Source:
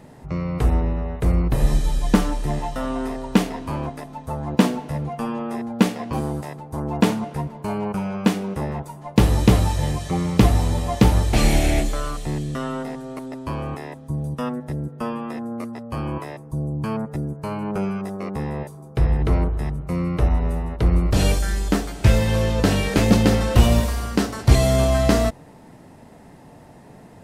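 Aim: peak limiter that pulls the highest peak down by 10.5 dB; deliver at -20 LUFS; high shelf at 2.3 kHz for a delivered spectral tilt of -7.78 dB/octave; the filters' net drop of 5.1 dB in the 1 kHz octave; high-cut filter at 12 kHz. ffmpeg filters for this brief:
-af "lowpass=12000,equalizer=f=1000:t=o:g=-5.5,highshelf=f=2300:g=-8,volume=2,alimiter=limit=0.447:level=0:latency=1"

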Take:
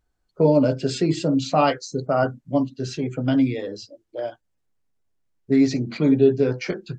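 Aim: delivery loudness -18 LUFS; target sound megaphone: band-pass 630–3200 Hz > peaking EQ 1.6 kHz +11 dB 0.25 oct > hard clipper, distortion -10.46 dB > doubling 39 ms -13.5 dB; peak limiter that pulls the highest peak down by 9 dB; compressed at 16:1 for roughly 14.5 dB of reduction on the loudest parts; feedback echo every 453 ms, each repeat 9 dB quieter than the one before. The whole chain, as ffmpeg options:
-filter_complex "[0:a]acompressor=threshold=0.0501:ratio=16,alimiter=limit=0.0631:level=0:latency=1,highpass=630,lowpass=3200,equalizer=f=1600:t=o:w=0.25:g=11,aecho=1:1:453|906|1359|1812:0.355|0.124|0.0435|0.0152,asoftclip=type=hard:threshold=0.0158,asplit=2[s0][s1];[s1]adelay=39,volume=0.211[s2];[s0][s2]amix=inputs=2:normalize=0,volume=16.8"

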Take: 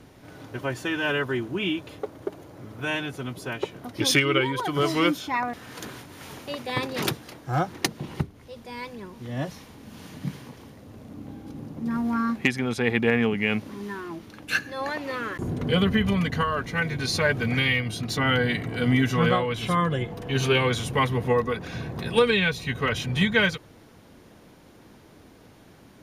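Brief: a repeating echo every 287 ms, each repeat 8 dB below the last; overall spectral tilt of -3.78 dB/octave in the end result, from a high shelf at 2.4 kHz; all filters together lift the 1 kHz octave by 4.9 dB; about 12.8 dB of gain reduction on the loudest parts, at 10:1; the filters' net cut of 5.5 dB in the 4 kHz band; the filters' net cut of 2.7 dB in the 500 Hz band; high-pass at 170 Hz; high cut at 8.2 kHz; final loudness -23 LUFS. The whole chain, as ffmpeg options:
-af "highpass=170,lowpass=8200,equalizer=f=500:t=o:g=-4.5,equalizer=f=1000:t=o:g=8,highshelf=f=2400:g=-4.5,equalizer=f=4000:t=o:g=-4,acompressor=threshold=0.0398:ratio=10,aecho=1:1:287|574|861|1148|1435:0.398|0.159|0.0637|0.0255|0.0102,volume=3.35"

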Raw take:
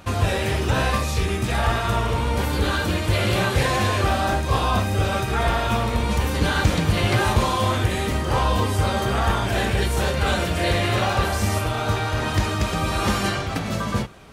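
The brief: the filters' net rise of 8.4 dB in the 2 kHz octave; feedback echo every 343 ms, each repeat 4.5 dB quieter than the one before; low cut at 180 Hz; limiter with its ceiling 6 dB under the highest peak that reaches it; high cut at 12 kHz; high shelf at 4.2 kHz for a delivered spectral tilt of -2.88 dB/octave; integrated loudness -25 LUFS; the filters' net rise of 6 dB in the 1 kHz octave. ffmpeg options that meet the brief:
-af "highpass=180,lowpass=12000,equalizer=f=1000:t=o:g=5,equalizer=f=2000:t=o:g=8,highshelf=f=4200:g=6,alimiter=limit=0.316:level=0:latency=1,aecho=1:1:343|686|1029|1372|1715|2058|2401|2744|3087:0.596|0.357|0.214|0.129|0.0772|0.0463|0.0278|0.0167|0.01,volume=0.422"

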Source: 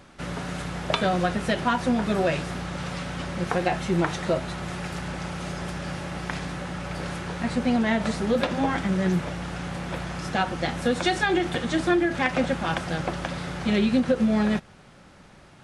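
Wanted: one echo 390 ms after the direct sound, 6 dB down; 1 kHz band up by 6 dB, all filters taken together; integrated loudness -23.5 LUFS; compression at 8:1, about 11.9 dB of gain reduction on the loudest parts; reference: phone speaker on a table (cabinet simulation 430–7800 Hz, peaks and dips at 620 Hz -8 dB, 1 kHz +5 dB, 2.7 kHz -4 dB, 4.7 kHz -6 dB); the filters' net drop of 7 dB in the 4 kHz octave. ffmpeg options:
-af "equalizer=f=1000:t=o:g=7,equalizer=f=4000:t=o:g=-6.5,acompressor=threshold=0.0398:ratio=8,highpass=f=430:w=0.5412,highpass=f=430:w=1.3066,equalizer=f=620:t=q:w=4:g=-8,equalizer=f=1000:t=q:w=4:g=5,equalizer=f=2700:t=q:w=4:g=-4,equalizer=f=4700:t=q:w=4:g=-6,lowpass=f=7800:w=0.5412,lowpass=f=7800:w=1.3066,aecho=1:1:390:0.501,volume=3.55"

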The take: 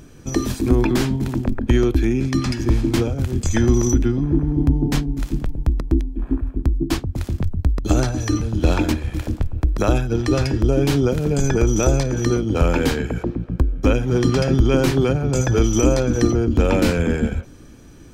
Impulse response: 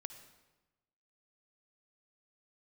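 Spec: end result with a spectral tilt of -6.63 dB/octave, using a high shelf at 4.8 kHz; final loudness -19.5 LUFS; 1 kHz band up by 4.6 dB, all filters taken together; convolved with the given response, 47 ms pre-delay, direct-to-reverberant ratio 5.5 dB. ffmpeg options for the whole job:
-filter_complex "[0:a]equalizer=f=1000:t=o:g=6.5,highshelf=f=4800:g=-6,asplit=2[s0][s1];[1:a]atrim=start_sample=2205,adelay=47[s2];[s1][s2]afir=irnorm=-1:irlink=0,volume=0.841[s3];[s0][s3]amix=inputs=2:normalize=0,volume=0.891"

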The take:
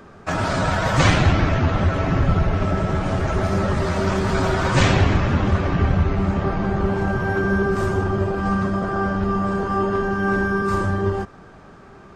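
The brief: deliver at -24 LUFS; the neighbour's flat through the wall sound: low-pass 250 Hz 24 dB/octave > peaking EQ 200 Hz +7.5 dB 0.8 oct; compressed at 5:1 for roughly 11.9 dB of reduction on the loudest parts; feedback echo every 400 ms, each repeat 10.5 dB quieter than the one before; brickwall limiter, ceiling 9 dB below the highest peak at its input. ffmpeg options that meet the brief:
-af "acompressor=threshold=0.0501:ratio=5,alimiter=level_in=1.06:limit=0.0631:level=0:latency=1,volume=0.944,lowpass=f=250:w=0.5412,lowpass=f=250:w=1.3066,equalizer=f=200:t=o:w=0.8:g=7.5,aecho=1:1:400|800|1200:0.299|0.0896|0.0269,volume=2.37"

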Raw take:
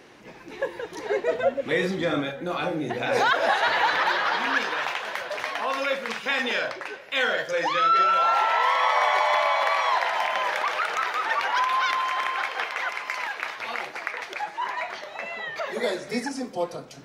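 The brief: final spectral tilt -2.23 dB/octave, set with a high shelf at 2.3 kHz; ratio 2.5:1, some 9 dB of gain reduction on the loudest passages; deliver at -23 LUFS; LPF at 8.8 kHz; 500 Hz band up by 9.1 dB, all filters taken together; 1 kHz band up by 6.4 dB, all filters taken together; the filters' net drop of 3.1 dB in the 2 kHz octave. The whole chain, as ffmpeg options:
-af "lowpass=8800,equalizer=f=500:t=o:g=9,equalizer=f=1000:t=o:g=8,equalizer=f=2000:t=o:g=-4,highshelf=f=2300:g=-8,acompressor=threshold=0.0708:ratio=2.5,volume=1.33"

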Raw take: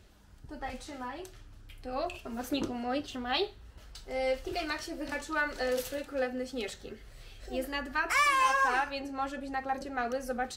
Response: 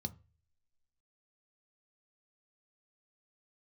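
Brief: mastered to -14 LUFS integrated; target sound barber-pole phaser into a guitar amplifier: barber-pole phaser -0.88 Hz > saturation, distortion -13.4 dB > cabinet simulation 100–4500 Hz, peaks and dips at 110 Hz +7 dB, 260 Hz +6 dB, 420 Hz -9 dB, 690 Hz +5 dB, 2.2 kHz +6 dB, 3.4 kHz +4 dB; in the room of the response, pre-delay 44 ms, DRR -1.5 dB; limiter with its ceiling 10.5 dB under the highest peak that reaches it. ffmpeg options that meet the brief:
-filter_complex "[0:a]alimiter=level_in=1.58:limit=0.0631:level=0:latency=1,volume=0.631,asplit=2[s0][s1];[1:a]atrim=start_sample=2205,adelay=44[s2];[s1][s2]afir=irnorm=-1:irlink=0,volume=1.5[s3];[s0][s3]amix=inputs=2:normalize=0,asplit=2[s4][s5];[s5]afreqshift=-0.88[s6];[s4][s6]amix=inputs=2:normalize=1,asoftclip=threshold=0.0335,highpass=100,equalizer=f=110:t=q:w=4:g=7,equalizer=f=260:t=q:w=4:g=6,equalizer=f=420:t=q:w=4:g=-9,equalizer=f=690:t=q:w=4:g=5,equalizer=f=2200:t=q:w=4:g=6,equalizer=f=3400:t=q:w=4:g=4,lowpass=f=4500:w=0.5412,lowpass=f=4500:w=1.3066,volume=11.2"

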